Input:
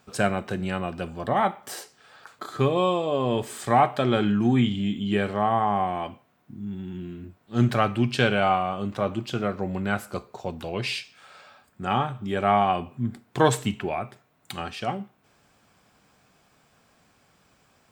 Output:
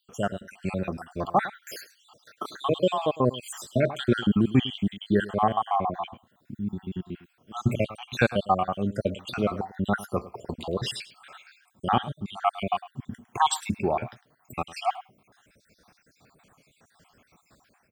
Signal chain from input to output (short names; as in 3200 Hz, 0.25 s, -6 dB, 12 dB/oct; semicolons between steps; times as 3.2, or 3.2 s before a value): random spectral dropouts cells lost 66%; dynamic EQ 2000 Hz, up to -5 dB, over -52 dBFS, Q 3.9; AGC gain up to 9 dB; on a send: echo 0.105 s -17.5 dB; on the sum: gain -4.5 dB